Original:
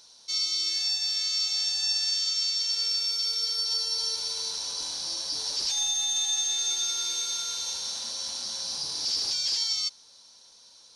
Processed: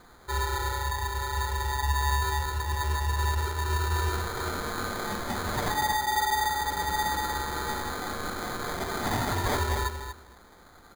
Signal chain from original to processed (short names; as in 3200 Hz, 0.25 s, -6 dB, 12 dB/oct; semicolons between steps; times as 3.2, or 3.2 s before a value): comb 6.3 ms, depth 31%; feedback echo 0.235 s, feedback 15%, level -8.5 dB; sample-and-hold 16×